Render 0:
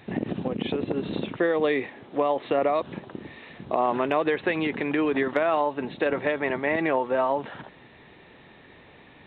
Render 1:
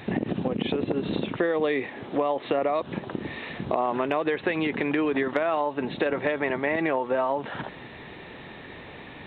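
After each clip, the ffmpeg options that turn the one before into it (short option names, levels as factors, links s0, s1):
-af "acompressor=threshold=0.0178:ratio=2.5,volume=2.66"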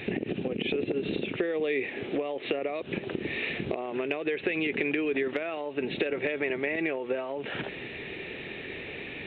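-af "acompressor=threshold=0.0355:ratio=6,equalizer=f=400:t=o:w=0.67:g=8,equalizer=f=1000:t=o:w=0.67:g=-9,equalizer=f=2500:t=o:w=0.67:g=12,volume=0.891"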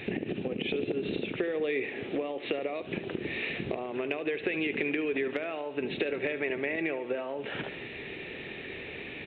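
-af "aecho=1:1:73|146|219|292|365|438:0.2|0.112|0.0626|0.035|0.0196|0.011,volume=0.794"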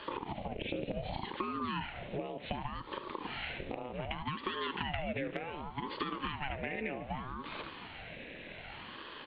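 -af "aeval=exprs='val(0)*sin(2*PI*430*n/s+430*0.75/0.66*sin(2*PI*0.66*n/s))':c=same,volume=0.668"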